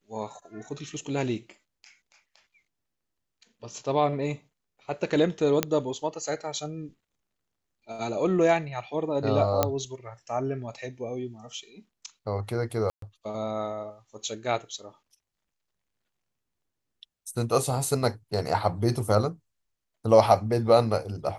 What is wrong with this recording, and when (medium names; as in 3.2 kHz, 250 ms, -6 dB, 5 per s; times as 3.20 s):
5.63 s: pop -7 dBFS
9.63 s: pop -7 dBFS
12.90–13.02 s: dropout 123 ms